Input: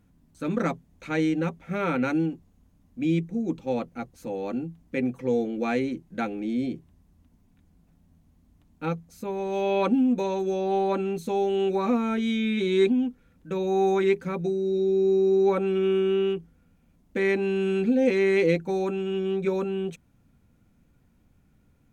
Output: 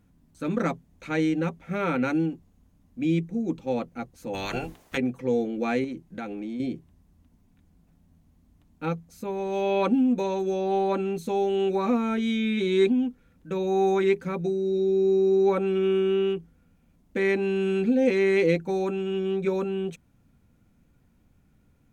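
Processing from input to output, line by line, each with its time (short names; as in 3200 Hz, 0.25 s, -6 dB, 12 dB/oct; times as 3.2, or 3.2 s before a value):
4.33–4.96 spectral limiter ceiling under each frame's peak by 30 dB
5.84–6.6 compressor, threshold -30 dBFS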